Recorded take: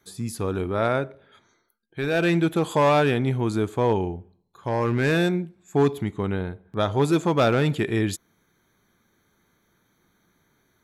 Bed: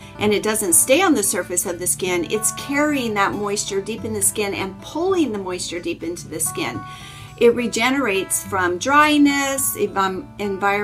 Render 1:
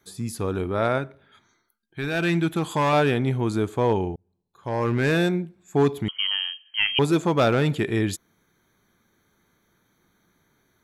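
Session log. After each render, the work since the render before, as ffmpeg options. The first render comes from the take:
-filter_complex "[0:a]asettb=1/sr,asplit=3[a][b][c];[a]atrim=end=0.984[d];[b]atrim=start=0.98:end=2.93,asetpts=PTS-STARTPTS,afade=t=in:d=0.004:c=qsin,afade=t=out:st=1.946:d=0.004:c=qsin,equalizer=f=510:t=o:w=0.77:g=-8[e];[c]atrim=start=2.926[f];[d][e]acrossfade=d=0.004:c1=hsin:c2=qsin[g];[g][f]acrossfade=d=0.004:c1=qsin:c2=hsin,asettb=1/sr,asplit=3[h][i][j];[h]atrim=end=6.084[k];[i]atrim=start=6.08:end=6.99,asetpts=PTS-STARTPTS,afade=t=in:d=0.004:c=qsin,afade=t=out:st=0.906:d=0.004:c=qsin,lowpass=f=2.8k:t=q:w=0.5098,lowpass=f=2.8k:t=q:w=0.6013,lowpass=f=2.8k:t=q:w=0.9,lowpass=f=2.8k:t=q:w=2.563,afreqshift=-3300[l];[j]atrim=start=6.986[m];[k][l]acrossfade=d=0.004:c1=hsin:c2=qsin[n];[n][m]acrossfade=d=0.004:c1=qsin:c2=hsin,asplit=2[o][p];[o]atrim=end=4.16,asetpts=PTS-STARTPTS,afade=t=out:st=4.156:d=0.004:c=hsin[q];[p]atrim=start=4.16,asetpts=PTS-STARTPTS,afade=t=in:d=0.71[r];[q][r]concat=n=2:v=0:a=1"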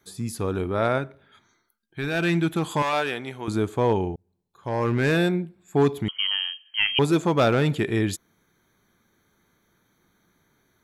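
-filter_complex "[0:a]asettb=1/sr,asplit=3[a][b][c];[a]atrim=end=2.824[d];[b]atrim=start=2.82:end=3.48,asetpts=PTS-STARTPTS,afade=t=in:d=0.004:c=qsin,afade=t=out:st=0.656:d=0.004:c=qsin,highpass=f=940:p=1[e];[c]atrim=start=3.476[f];[d][e]acrossfade=d=0.004:c1=hsin:c2=qsin[g];[g][f]acrossfade=d=0.004:c1=qsin:c2=hsin,asettb=1/sr,asplit=3[h][i][j];[h]atrim=end=5.164[k];[i]atrim=start=5.16:end=5.82,asetpts=PTS-STARTPTS,afade=t=in:d=0.004:c=qsin,afade=t=out:st=0.656:d=0.004:c=qsin,equalizer=f=6.2k:w=7.3:g=-13[l];[j]atrim=start=5.816[m];[k][l]acrossfade=d=0.004:c1=hsin:c2=qsin[n];[n][m]acrossfade=d=0.004:c1=qsin:c2=hsin"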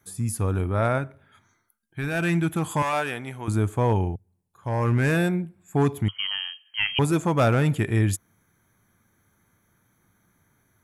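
-af "equalizer=f=100:t=o:w=0.67:g=8,equalizer=f=400:t=o:w=0.67:g=-5,equalizer=f=4k:t=o:w=0.67:g=-9,equalizer=f=10k:t=o:w=0.67:g=7"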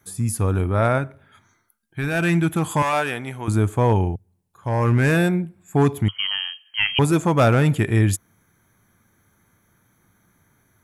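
-af "volume=4dB"

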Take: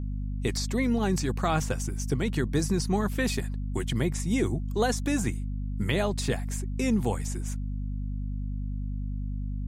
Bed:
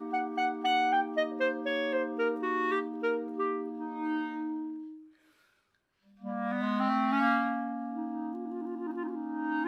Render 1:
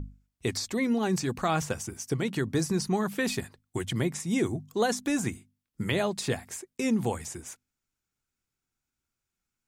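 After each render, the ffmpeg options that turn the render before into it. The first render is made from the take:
-af "bandreject=f=50:t=h:w=6,bandreject=f=100:t=h:w=6,bandreject=f=150:t=h:w=6,bandreject=f=200:t=h:w=6,bandreject=f=250:t=h:w=6"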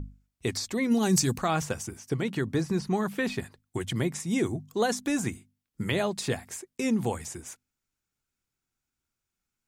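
-filter_complex "[0:a]asplit=3[a][b][c];[a]afade=t=out:st=0.9:d=0.02[d];[b]bass=f=250:g=6,treble=f=4k:g=12,afade=t=in:st=0.9:d=0.02,afade=t=out:st=1.37:d=0.02[e];[c]afade=t=in:st=1.37:d=0.02[f];[d][e][f]amix=inputs=3:normalize=0,asettb=1/sr,asplit=3[g][h][i];[g]atrim=end=1.894[j];[h]atrim=start=1.89:end=3.81,asetpts=PTS-STARTPTS,afade=t=in:d=0.004:c=qsin,afade=t=out:st=1.916:d=0.004:c=qsin,acrossover=split=3800[k][l];[l]acompressor=threshold=-47dB:ratio=4:attack=1:release=60[m];[k][m]amix=inputs=2:normalize=0[n];[i]atrim=start=3.806[o];[j][n]acrossfade=d=0.004:c1=hsin:c2=qsin[p];[p][o]acrossfade=d=0.004:c1=qsin:c2=hsin"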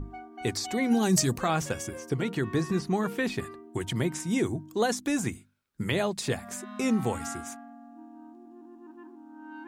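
-filter_complex "[1:a]volume=-12dB[a];[0:a][a]amix=inputs=2:normalize=0"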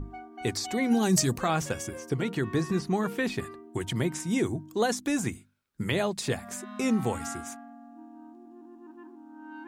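-af anull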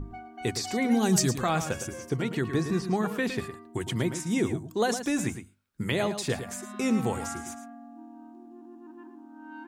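-filter_complex "[0:a]asplit=2[a][b];[b]adelay=110.8,volume=-10dB,highshelf=f=4k:g=-2.49[c];[a][c]amix=inputs=2:normalize=0"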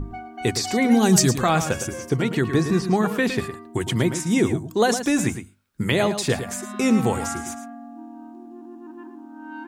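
-af "volume=7dB"

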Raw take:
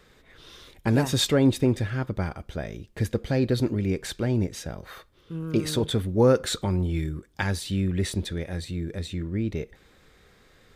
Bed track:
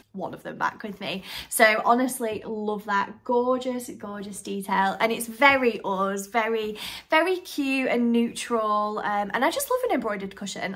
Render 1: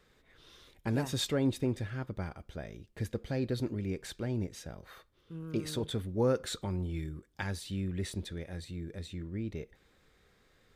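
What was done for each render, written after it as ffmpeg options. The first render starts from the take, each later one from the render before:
-af "volume=-9.5dB"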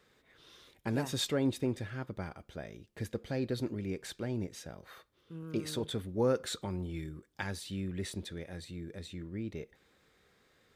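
-af "highpass=f=130:p=1"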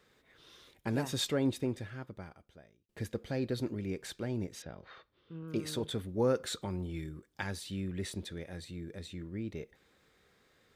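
-filter_complex "[0:a]asettb=1/sr,asplit=3[a][b][c];[a]atrim=end=4.624[d];[b]atrim=start=4.62:end=5.48,asetpts=PTS-STARTPTS,afade=t=in:d=0.004:c=qsin,afade=t=out:st=0.856:d=0.004:c=qsin,lowpass=f=4.5k:w=0.5412,lowpass=f=4.5k:w=1.3066[e];[c]atrim=start=5.476[f];[d][e]acrossfade=d=0.004:c1=hsin:c2=qsin[g];[g][f]acrossfade=d=0.004:c1=qsin:c2=hsin,asplit=2[h][i];[h]atrim=end=2.89,asetpts=PTS-STARTPTS,afade=t=out:st=1.48:d=1.41[j];[i]atrim=start=2.89,asetpts=PTS-STARTPTS,afade=t=in:d=0.004:c=hsin[k];[j][k]concat=n=2:v=0:a=1"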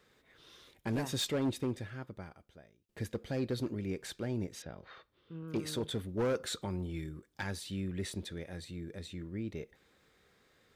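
-af "asoftclip=type=hard:threshold=-27.5dB"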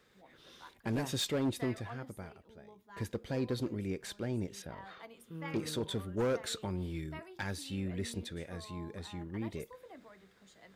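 -filter_complex "[1:a]volume=-28.5dB[a];[0:a][a]amix=inputs=2:normalize=0"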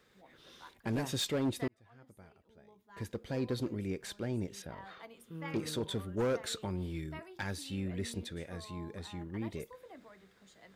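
-filter_complex "[0:a]asplit=2[a][b];[a]atrim=end=1.68,asetpts=PTS-STARTPTS,afade=t=out:st=1.676:d=0.004:c=hsin[c];[b]atrim=start=1.68,asetpts=PTS-STARTPTS,afade=t=in:d=1.82[d];[c][d]concat=n=2:v=0:a=1"

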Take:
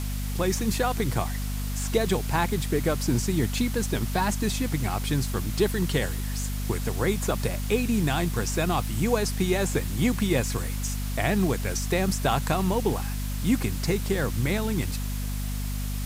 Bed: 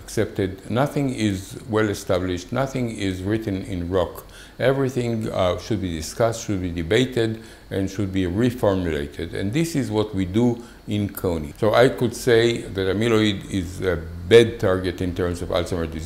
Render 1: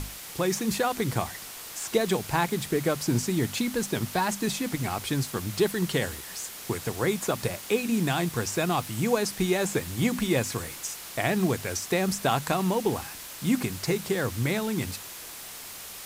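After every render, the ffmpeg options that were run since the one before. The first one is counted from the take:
-af "bandreject=f=50:t=h:w=6,bandreject=f=100:t=h:w=6,bandreject=f=150:t=h:w=6,bandreject=f=200:t=h:w=6,bandreject=f=250:t=h:w=6"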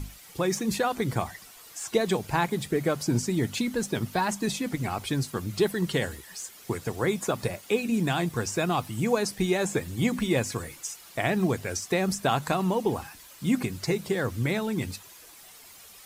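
-af "afftdn=nr=11:nf=-41"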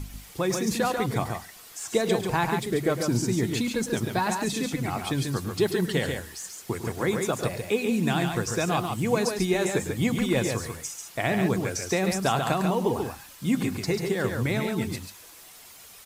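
-af "aecho=1:1:104|140:0.224|0.562"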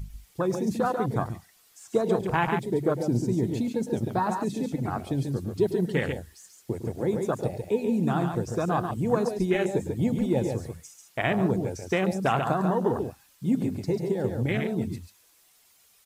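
-af "highshelf=f=2.2k:g=4.5,afwtdn=0.0447"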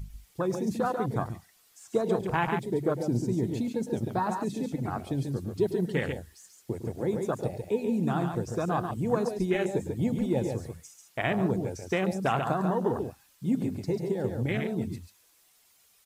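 -af "volume=-2.5dB"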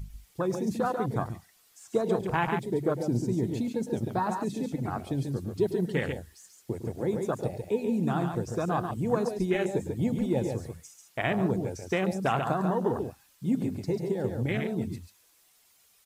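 -af anull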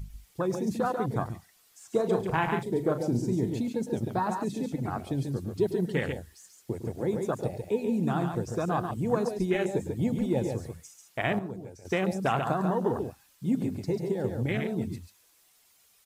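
-filter_complex "[0:a]asettb=1/sr,asplit=3[a][b][c];[a]atrim=end=1.954[d];[b]atrim=start=1.95:end=3.5,asetpts=PTS-STARTPTS,afade=t=in:d=0.004:c=qsin,afade=t=out:st=1.546:d=0.004:c=qsin,asplit=2[e][f];[f]adelay=38,volume=-10.5dB[g];[e][g]amix=inputs=2:normalize=0,atrim=end_sample=68355[h];[c]atrim=start=3.496[i];[d][h]acrossfade=d=0.004:c1=hsin:c2=qsin[j];[j][i]acrossfade=d=0.004:c1=qsin:c2=hsin,asplit=3[k][l][m];[k]atrim=end=11.392[n];[l]atrim=start=11.388:end=11.852,asetpts=PTS-STARTPTS,volume=-10.5dB[o];[m]atrim=start=11.848[p];[n][o]acrossfade=d=0.004:c1=hsin:c2=hsin[q];[q][p]acrossfade=d=0.004:c1=hsin:c2=hsin"

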